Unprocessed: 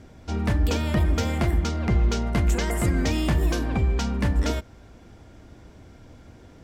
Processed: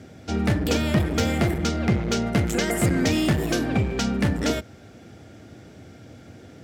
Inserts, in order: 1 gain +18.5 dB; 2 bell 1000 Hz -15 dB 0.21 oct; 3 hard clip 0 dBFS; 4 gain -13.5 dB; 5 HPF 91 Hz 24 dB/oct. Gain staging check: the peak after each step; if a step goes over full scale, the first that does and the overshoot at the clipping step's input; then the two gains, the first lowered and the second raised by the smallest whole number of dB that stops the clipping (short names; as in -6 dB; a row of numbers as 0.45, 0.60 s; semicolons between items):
+5.5, +5.5, 0.0, -13.5, -7.0 dBFS; step 1, 5.5 dB; step 1 +12.5 dB, step 4 -7.5 dB